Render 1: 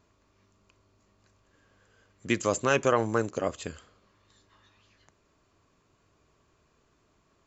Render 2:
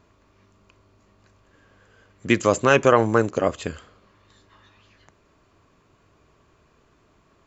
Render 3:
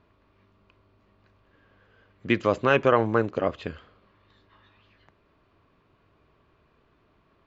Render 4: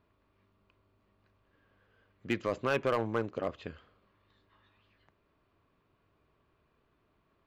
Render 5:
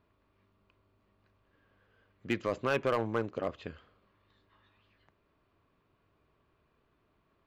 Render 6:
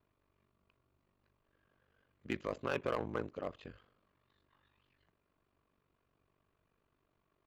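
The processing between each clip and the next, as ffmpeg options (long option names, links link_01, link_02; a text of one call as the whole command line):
ffmpeg -i in.wav -af "bass=frequency=250:gain=0,treble=frequency=4000:gain=-6,volume=8dB" out.wav
ffmpeg -i in.wav -af "lowpass=frequency=4200:width=0.5412,lowpass=frequency=4200:width=1.3066,volume=-4dB" out.wav
ffmpeg -i in.wav -af "volume=13.5dB,asoftclip=hard,volume=-13.5dB,volume=-8.5dB" out.wav
ffmpeg -i in.wav -af anull out.wav
ffmpeg -i in.wav -af "aeval=exprs='val(0)*sin(2*PI*24*n/s)':channel_layout=same,volume=-3.5dB" out.wav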